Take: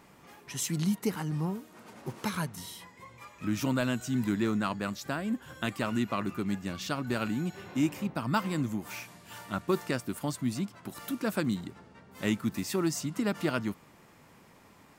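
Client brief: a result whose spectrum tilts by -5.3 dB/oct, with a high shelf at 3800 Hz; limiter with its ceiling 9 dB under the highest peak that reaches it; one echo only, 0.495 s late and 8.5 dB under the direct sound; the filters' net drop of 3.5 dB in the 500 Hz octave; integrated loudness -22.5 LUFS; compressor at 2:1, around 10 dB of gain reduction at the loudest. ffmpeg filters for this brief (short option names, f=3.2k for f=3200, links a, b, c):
-af "equalizer=f=500:t=o:g=-5,highshelf=f=3.8k:g=-5,acompressor=threshold=-44dB:ratio=2,alimiter=level_in=7dB:limit=-24dB:level=0:latency=1,volume=-7dB,aecho=1:1:495:0.376,volume=20.5dB"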